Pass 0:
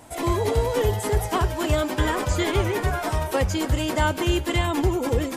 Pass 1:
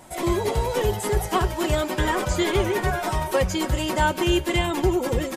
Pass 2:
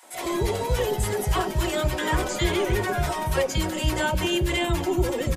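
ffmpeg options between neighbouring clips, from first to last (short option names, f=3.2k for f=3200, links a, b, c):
-af "aecho=1:1:5.4:0.48"
-filter_complex "[0:a]acrossover=split=300|980[a][b][c];[b]adelay=30[d];[a]adelay=140[e];[e][d][c]amix=inputs=3:normalize=0"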